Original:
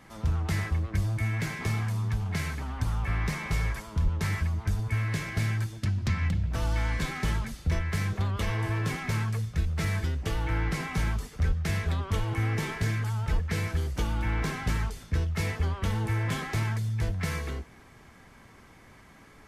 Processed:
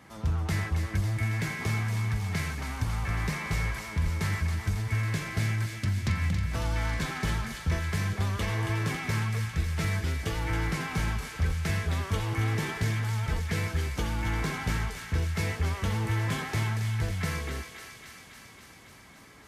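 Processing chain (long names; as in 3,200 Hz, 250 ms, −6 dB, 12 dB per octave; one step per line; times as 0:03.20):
high-pass filter 51 Hz
feedback echo with a high-pass in the loop 275 ms, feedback 79%, high-pass 1,100 Hz, level −6 dB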